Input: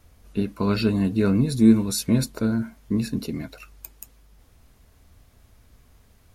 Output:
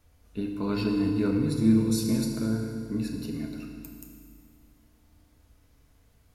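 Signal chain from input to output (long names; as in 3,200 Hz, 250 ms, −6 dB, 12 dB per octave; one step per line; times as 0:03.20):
feedback delay network reverb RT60 2.2 s, low-frequency decay 1.25×, high-frequency decay 0.9×, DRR 1.5 dB
level −8.5 dB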